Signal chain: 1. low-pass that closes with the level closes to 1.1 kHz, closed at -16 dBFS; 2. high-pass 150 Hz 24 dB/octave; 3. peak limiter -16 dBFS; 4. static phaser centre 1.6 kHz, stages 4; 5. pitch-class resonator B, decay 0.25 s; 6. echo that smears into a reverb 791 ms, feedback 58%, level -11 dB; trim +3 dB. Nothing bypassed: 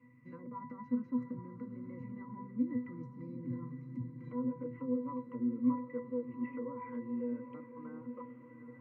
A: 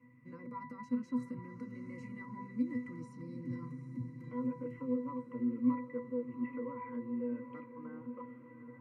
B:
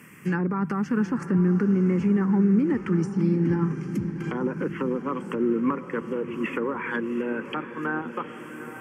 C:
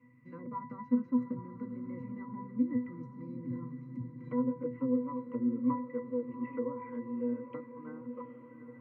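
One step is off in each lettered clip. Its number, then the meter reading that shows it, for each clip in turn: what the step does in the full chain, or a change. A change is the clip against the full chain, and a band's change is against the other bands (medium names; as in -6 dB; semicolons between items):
1, 2 kHz band +4.5 dB; 5, 2 kHz band +10.0 dB; 3, mean gain reduction 1.5 dB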